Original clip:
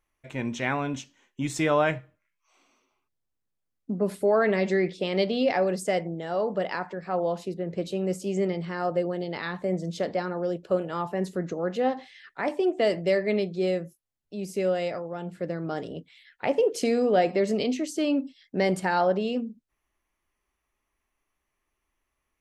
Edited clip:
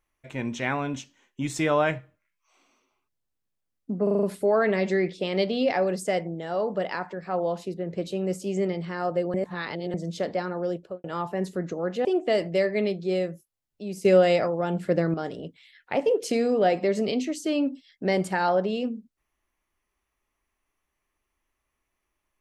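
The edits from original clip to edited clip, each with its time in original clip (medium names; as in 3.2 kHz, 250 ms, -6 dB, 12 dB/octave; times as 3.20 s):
4.03 s: stutter 0.04 s, 6 plays
9.14–9.74 s: reverse
10.54–10.84 s: studio fade out
11.85–12.57 s: delete
14.57–15.66 s: gain +8 dB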